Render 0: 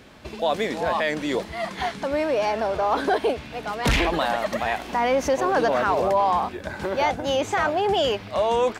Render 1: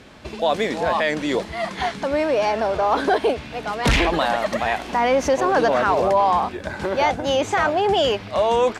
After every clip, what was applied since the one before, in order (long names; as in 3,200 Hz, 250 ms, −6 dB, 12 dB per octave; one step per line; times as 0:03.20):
low-pass filter 11,000 Hz 12 dB per octave
level +3 dB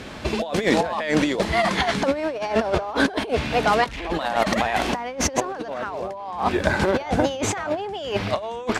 compressor whose output falls as the input rises −25 dBFS, ratio −0.5
level +3 dB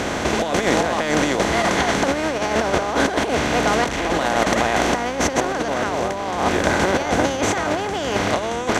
compressor on every frequency bin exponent 0.4
level −4 dB